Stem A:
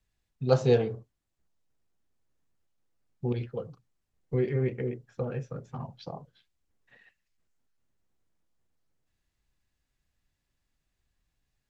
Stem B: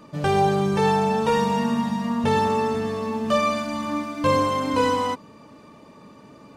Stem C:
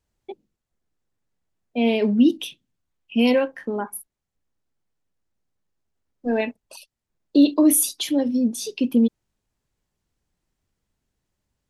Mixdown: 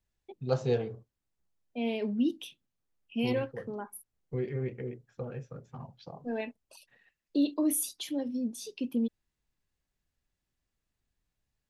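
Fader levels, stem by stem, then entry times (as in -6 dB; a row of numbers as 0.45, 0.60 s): -6.0 dB, off, -12.0 dB; 0.00 s, off, 0.00 s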